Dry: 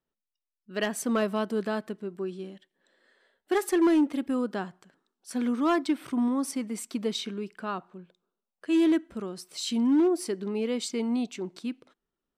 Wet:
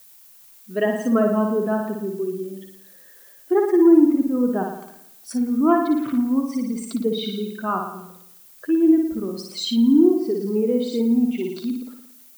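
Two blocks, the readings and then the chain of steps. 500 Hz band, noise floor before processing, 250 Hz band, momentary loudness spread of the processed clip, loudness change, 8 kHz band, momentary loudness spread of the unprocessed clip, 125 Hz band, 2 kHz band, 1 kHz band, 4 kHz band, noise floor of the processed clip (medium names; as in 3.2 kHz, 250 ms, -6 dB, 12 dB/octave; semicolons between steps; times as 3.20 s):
+8.5 dB, under -85 dBFS, +8.5 dB, 15 LU, +8.0 dB, -2.0 dB, 14 LU, no reading, +1.5 dB, +6.5 dB, +4.0 dB, -49 dBFS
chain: spectral contrast enhancement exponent 1.7; peaking EQ 930 Hz +3 dB 1.4 oct; on a send: flutter echo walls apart 9.7 m, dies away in 0.75 s; on the sum: low-pass that closes with the level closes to 2.1 kHz, closed at -23 dBFS; added noise violet -55 dBFS; crackle 600 per s -55 dBFS; trim +6 dB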